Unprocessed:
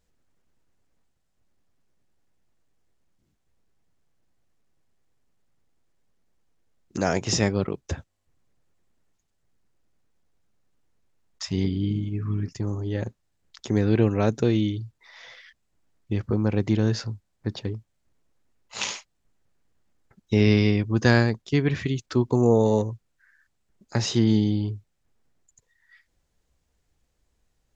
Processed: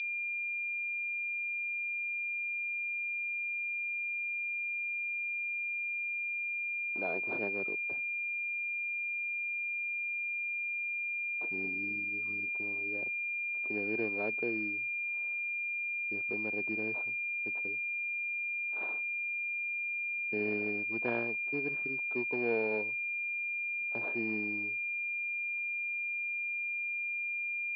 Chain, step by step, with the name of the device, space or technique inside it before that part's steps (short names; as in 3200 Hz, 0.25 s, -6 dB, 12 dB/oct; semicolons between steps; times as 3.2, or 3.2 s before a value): toy sound module (decimation joined by straight lines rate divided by 8×; pulse-width modulation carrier 2400 Hz; speaker cabinet 520–4800 Hz, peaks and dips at 540 Hz -6 dB, 830 Hz -6 dB, 1200 Hz -9 dB, 2000 Hz -9 dB, 3700 Hz +8 dB); gain -4.5 dB